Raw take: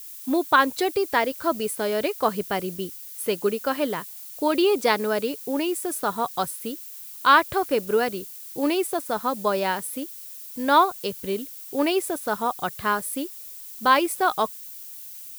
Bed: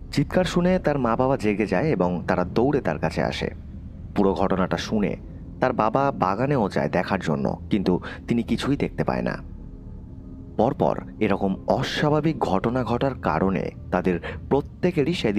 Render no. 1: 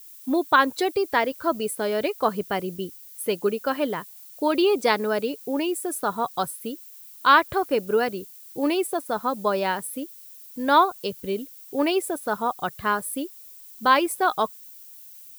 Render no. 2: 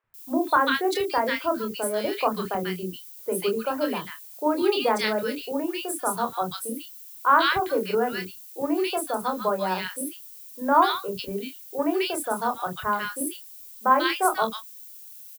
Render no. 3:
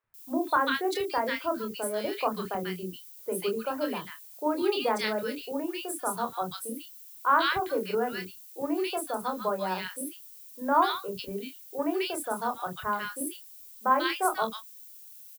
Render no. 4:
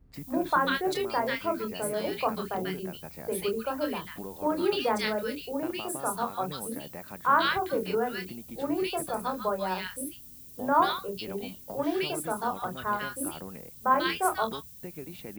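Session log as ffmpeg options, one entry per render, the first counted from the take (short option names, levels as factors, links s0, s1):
-af "afftdn=nr=7:nf=-40"
-filter_complex "[0:a]asplit=2[s0][s1];[s1]adelay=27,volume=0.447[s2];[s0][s2]amix=inputs=2:normalize=0,acrossover=split=370|1500[s3][s4][s5];[s3]adelay=40[s6];[s5]adelay=140[s7];[s6][s4][s7]amix=inputs=3:normalize=0"
-af "volume=0.596"
-filter_complex "[1:a]volume=0.0944[s0];[0:a][s0]amix=inputs=2:normalize=0"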